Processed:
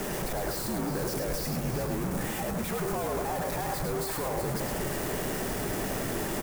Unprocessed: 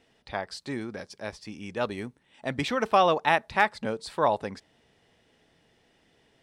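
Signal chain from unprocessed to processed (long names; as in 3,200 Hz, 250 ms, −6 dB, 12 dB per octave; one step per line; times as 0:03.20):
sign of each sample alone
parametric band 130 Hz −12.5 dB 0.33 octaves
single-tap delay 364 ms −9 dB
frequency shifter −58 Hz
parametric band 3,400 Hz −14 dB 1.9 octaves
on a send: single-tap delay 105 ms −5.5 dB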